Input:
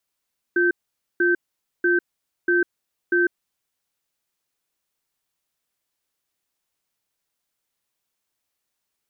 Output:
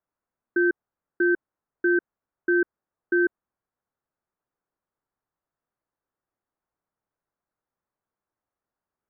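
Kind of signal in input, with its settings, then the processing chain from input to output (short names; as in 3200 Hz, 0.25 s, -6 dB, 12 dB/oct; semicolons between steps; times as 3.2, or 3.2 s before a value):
cadence 351 Hz, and 1550 Hz, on 0.15 s, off 0.49 s, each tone -18.5 dBFS 2.93 s
LPF 1500 Hz 24 dB/oct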